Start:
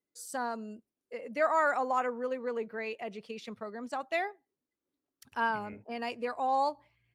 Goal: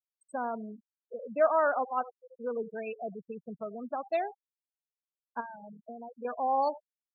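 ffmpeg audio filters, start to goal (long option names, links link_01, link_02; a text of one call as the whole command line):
ffmpeg -i in.wav -filter_complex "[0:a]highshelf=frequency=9100:gain=-6.5,asplit=3[link_01][link_02][link_03];[link_01]afade=type=out:start_time=1.83:duration=0.02[link_04];[link_02]agate=range=-20dB:threshold=-28dB:ratio=16:detection=peak,afade=type=in:start_time=1.83:duration=0.02,afade=type=out:start_time=2.39:duration=0.02[link_05];[link_03]afade=type=in:start_time=2.39:duration=0.02[link_06];[link_04][link_05][link_06]amix=inputs=3:normalize=0,equalizer=frequency=160:width_type=o:width=0.33:gain=11,equalizer=frequency=630:width_type=o:width=0.33:gain=5,equalizer=frequency=2000:width_type=o:width=0.33:gain=-12,asplit=2[link_07][link_08];[link_08]adelay=82,lowpass=frequency=2100:poles=1,volume=-18dB,asplit=2[link_09][link_10];[link_10]adelay=82,lowpass=frequency=2100:poles=1,volume=0.21[link_11];[link_09][link_11]amix=inputs=2:normalize=0[link_12];[link_07][link_12]amix=inputs=2:normalize=0,asettb=1/sr,asplit=3[link_13][link_14][link_15];[link_13]atrim=end=5.404[link_16];[link_14]atrim=start=5.4:end=6.25,asetpts=PTS-STARTPTS,afade=type=in:duration=0.004:curve=qsin,afade=type=out:start_time=0.846:duration=0.004:curve=qsin,acompressor=threshold=-41dB:ratio=5[link_17];[link_15]atrim=start=6.246[link_18];[link_16][link_17]acrossfade=duration=0.004:curve1=hsin:curve2=qsin[link_19];[link_19][link_18]acrossfade=duration=0.004:curve1=qsin:curve2=hsin,afftfilt=real='re*gte(hypot(re,im),0.0251)':imag='im*gte(hypot(re,im),0.0251)':win_size=1024:overlap=0.75" out.wav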